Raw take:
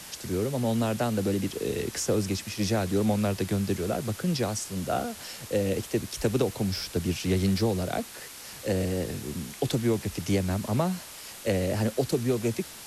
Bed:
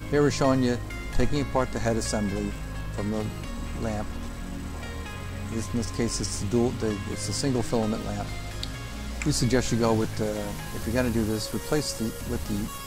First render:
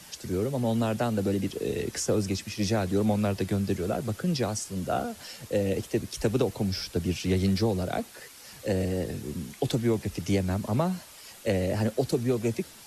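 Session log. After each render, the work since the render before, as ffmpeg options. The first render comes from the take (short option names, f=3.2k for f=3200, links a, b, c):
-af "afftdn=nr=7:nf=-44"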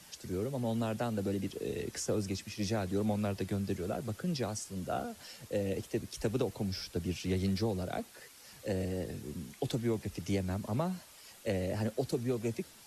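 -af "volume=-7dB"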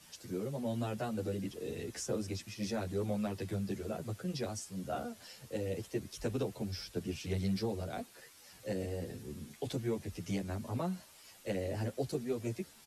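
-filter_complex "[0:a]asplit=2[a][b];[b]adelay=10.5,afreqshift=1.8[c];[a][c]amix=inputs=2:normalize=1"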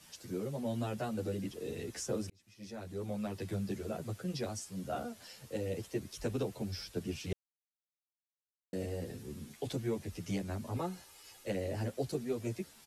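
-filter_complex "[0:a]asettb=1/sr,asplit=3[a][b][c];[a]atrim=end=10.764[d];[b]atrim=start=10.76:end=11.44,asetpts=PTS-STARTPTS,afade=t=in:d=0.004:c=qsin,afade=t=out:st=0.676:d=0.004:c=qsin,aecho=1:1:2.4:0.56,atrim=end_sample=29988[e];[c]atrim=start=11.436[f];[d][e]acrossfade=d=0.004:c1=hsin:c2=qsin[g];[g][f]acrossfade=d=0.004:c1=qsin:c2=hsin,asplit=4[h][i][j][k];[h]atrim=end=2.3,asetpts=PTS-STARTPTS,afade=t=out:st=2.296:d=0.004:c=hsin[l];[i]atrim=start=2.3:end=7.33,asetpts=PTS-STARTPTS,afade=t=in:d=1.23,afade=t=out:st=5.026:d=0.004:c=hsin[m];[j]atrim=start=7.33:end=8.73,asetpts=PTS-STARTPTS,volume=0[n];[k]atrim=start=8.73,asetpts=PTS-STARTPTS,afade=t=in:d=0.004:c=hsin[o];[l][m][n][o]concat=n=4:v=0:a=1"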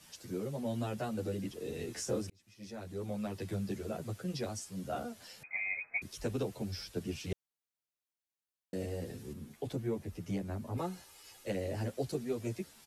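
-filter_complex "[0:a]asettb=1/sr,asplit=3[a][b][c];[a]atrim=end=1.714[d];[b]atrim=start=1.71:end=2.21,asetpts=PTS-STARTPTS,afade=t=in:d=0.004:c=qsin,afade=t=out:st=0.496:d=0.004:c=qsin,asplit=2[e][f];[f]adelay=25,volume=-5dB[g];[e][g]amix=inputs=2:normalize=0,atrim=end_sample=22050[h];[c]atrim=start=2.206[i];[d][h]acrossfade=d=0.004:c1=hsin:c2=qsin[j];[j][i]acrossfade=d=0.004:c1=qsin:c2=hsin,asettb=1/sr,asplit=3[k][l][m];[k]atrim=end=5.434[n];[l]atrim=start=5.43:end=6.02,asetpts=PTS-STARTPTS,afade=t=in:d=0.004:c=qsin,afade=t=out:st=0.586:d=0.004:c=qsin,lowpass=f=2.2k:t=q:w=0.5098,lowpass=f=2.2k:t=q:w=0.6013,lowpass=f=2.2k:t=q:w=0.9,lowpass=f=2.2k:t=q:w=2.563,afreqshift=-2600[o];[m]atrim=start=6.016[p];[n][o]acrossfade=d=0.004:c1=hsin:c2=qsin[q];[q][p]acrossfade=d=0.004:c1=qsin:c2=hsin,asettb=1/sr,asplit=3[r][s][t];[r]atrim=end=9.334[u];[s]atrim=start=9.33:end=10.78,asetpts=PTS-STARTPTS,afade=t=in:d=0.004:c=qsin,afade=t=out:st=1.446:d=0.004:c=qsin,equalizer=f=5.7k:w=0.34:g=-7.5[v];[t]atrim=start=10.776[w];[u][v]acrossfade=d=0.004:c1=hsin:c2=qsin[x];[x][w]acrossfade=d=0.004:c1=qsin:c2=hsin"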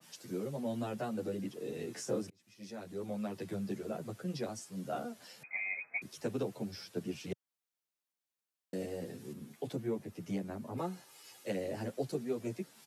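-af "highpass=f=130:w=0.5412,highpass=f=130:w=1.3066,adynamicequalizer=threshold=0.00158:dfrequency=2000:dqfactor=0.7:tfrequency=2000:tqfactor=0.7:attack=5:release=100:ratio=0.375:range=2:mode=cutabove:tftype=highshelf"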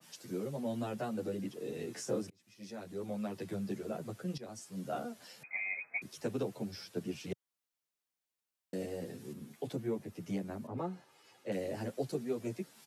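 -filter_complex "[0:a]asettb=1/sr,asplit=3[a][b][c];[a]atrim=end=10.674[d];[b]atrim=start=10.67:end=11.52,asetpts=PTS-STARTPTS,afade=t=in:d=0.004:c=qsin,afade=t=out:st=0.846:d=0.004:c=qsin,lowpass=f=1.7k:p=1[e];[c]atrim=start=11.516[f];[d][e]acrossfade=d=0.004:c1=hsin:c2=qsin[g];[g][f]acrossfade=d=0.004:c1=qsin:c2=hsin,asplit=2[h][i];[h]atrim=end=4.38,asetpts=PTS-STARTPTS,afade=t=out:st=4.376:d=0.004:c=hsin:silence=0.177828[j];[i]atrim=start=4.38,asetpts=PTS-STARTPTS,afade=t=in:d=0.43:c=qsin:silence=0.177828[k];[j][k]concat=n=2:v=0:a=1"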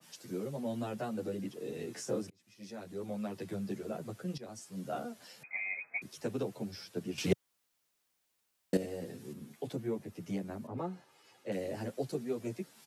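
-filter_complex "[0:a]asplit=3[a][b][c];[a]atrim=end=7.182[d];[b]atrim=start=7.178:end=8.772,asetpts=PTS-STARTPTS,volume=11dB[e];[c]atrim=start=8.768[f];[d][e]acrossfade=d=0.004:c1=hsin:c2=hsin[g];[g][f]acrossfade=d=0.004:c1=hsin:c2=hsin"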